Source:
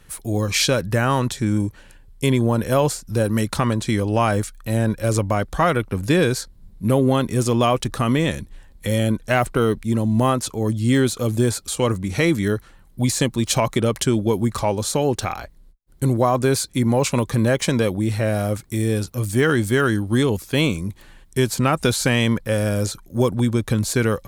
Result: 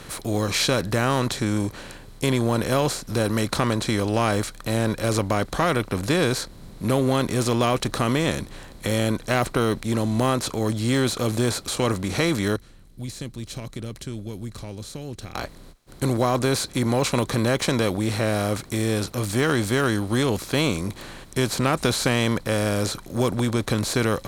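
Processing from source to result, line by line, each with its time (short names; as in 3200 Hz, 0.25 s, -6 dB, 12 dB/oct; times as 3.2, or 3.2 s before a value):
12.56–15.35 passive tone stack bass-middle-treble 10-0-1
whole clip: per-bin compression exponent 0.6; bell 4000 Hz +5.5 dB 0.2 oct; gain -6.5 dB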